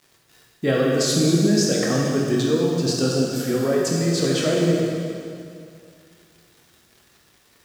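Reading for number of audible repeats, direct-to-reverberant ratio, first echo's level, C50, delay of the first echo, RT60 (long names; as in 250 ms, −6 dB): no echo audible, −3.5 dB, no echo audible, −1.0 dB, no echo audible, 2.4 s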